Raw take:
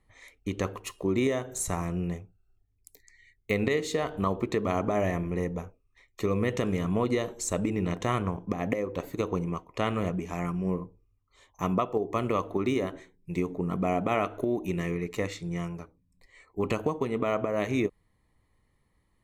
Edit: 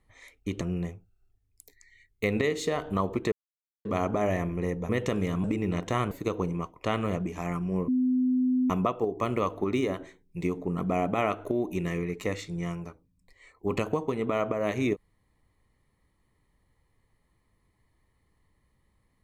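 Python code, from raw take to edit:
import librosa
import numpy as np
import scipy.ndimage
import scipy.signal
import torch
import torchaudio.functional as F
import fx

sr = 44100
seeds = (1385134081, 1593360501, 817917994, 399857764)

y = fx.edit(x, sr, fx.cut(start_s=0.61, length_s=1.27),
    fx.insert_silence(at_s=4.59, length_s=0.53),
    fx.cut(start_s=5.63, length_s=0.77),
    fx.cut(start_s=6.95, length_s=0.63),
    fx.cut(start_s=8.25, length_s=0.79),
    fx.bleep(start_s=10.81, length_s=0.82, hz=254.0, db=-21.5), tone=tone)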